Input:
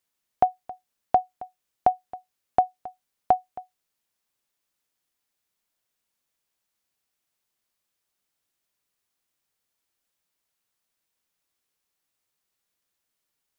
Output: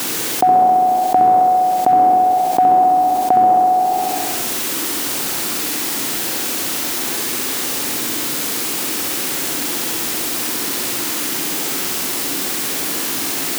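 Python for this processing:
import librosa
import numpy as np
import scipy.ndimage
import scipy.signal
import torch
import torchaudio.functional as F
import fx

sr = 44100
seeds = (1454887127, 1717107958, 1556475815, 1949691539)

y = fx.spec_trails(x, sr, decay_s=1.22)
y = fx.quant_dither(y, sr, seeds[0], bits=8, dither='triangular')
y = scipy.signal.sosfilt(scipy.signal.butter(2, 110.0, 'highpass', fs=sr, output='sos'), y)
y = fx.peak_eq(y, sr, hz=300.0, db=12.0, octaves=0.97)
y = fx.notch(y, sr, hz=610.0, q=16.0)
y = fx.room_flutter(y, sr, wall_m=11.4, rt60_s=0.93)
y = fx.env_flatten(y, sr, amount_pct=70)
y = y * librosa.db_to_amplitude(-1.0)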